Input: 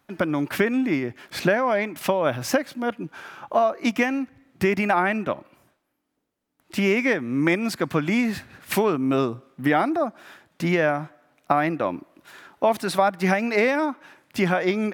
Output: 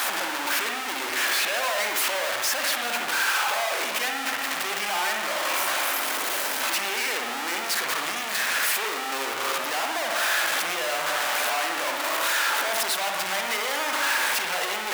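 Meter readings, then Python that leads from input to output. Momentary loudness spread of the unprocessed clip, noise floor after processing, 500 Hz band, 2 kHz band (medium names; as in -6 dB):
9 LU, -30 dBFS, -8.5 dB, +3.5 dB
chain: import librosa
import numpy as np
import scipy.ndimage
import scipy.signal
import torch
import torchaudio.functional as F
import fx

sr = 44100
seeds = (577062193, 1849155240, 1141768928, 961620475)

y = np.sign(x) * np.sqrt(np.mean(np.square(x)))
y = scipy.signal.sosfilt(scipy.signal.butter(2, 820.0, 'highpass', fs=sr, output='sos'), y)
y = fx.rev_spring(y, sr, rt60_s=1.1, pass_ms=(59,), chirp_ms=65, drr_db=2.0)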